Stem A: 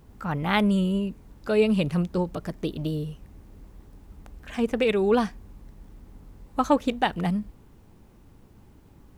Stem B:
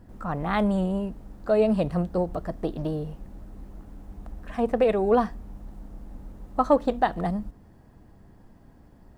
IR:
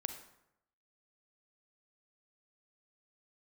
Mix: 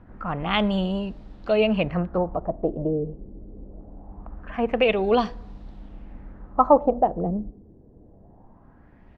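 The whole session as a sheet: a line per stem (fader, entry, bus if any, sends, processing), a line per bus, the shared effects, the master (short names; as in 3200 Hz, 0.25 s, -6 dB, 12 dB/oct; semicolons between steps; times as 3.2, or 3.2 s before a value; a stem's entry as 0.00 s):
+2.0 dB, 0.00 s, no send, steep high-pass 1800 Hz 48 dB/oct; harmonic-percussive split percussive +7 dB; auto duck -12 dB, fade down 0.25 s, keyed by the second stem
-1.5 dB, 0.7 ms, send -11.5 dB, dry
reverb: on, RT60 0.80 s, pre-delay 33 ms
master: LFO low-pass sine 0.23 Hz 410–4100 Hz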